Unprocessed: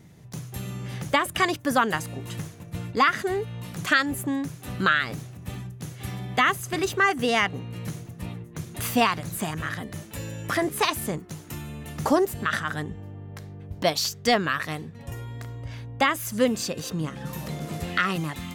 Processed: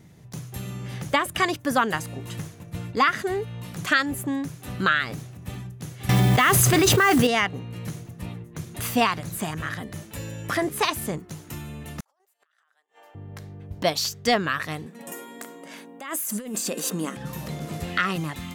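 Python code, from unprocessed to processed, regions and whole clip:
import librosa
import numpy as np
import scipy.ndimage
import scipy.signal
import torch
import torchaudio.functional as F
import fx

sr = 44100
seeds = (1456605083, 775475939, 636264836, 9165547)

y = fx.chain(x, sr, fx.mod_noise(seeds[0], snr_db=21),
    fx.env_flatten(amount_pct=100), at=(6.09, 7.27))
y = fx.chain(y, sr, fx.highpass(hz=640.0, slope=24),
    fx.over_compress(threshold_db=-33.0, ratio=-1.0),
    fx.gate_flip(shuts_db=-29.0, range_db=-37), at=(12.0, 13.15))
y = fx.chain(y, sr, fx.brickwall_highpass(low_hz=170.0),
    fx.high_shelf_res(hz=6500.0, db=7.0, q=1.5),
    fx.over_compress(threshold_db=-30.0, ratio=-1.0), at=(14.86, 17.17))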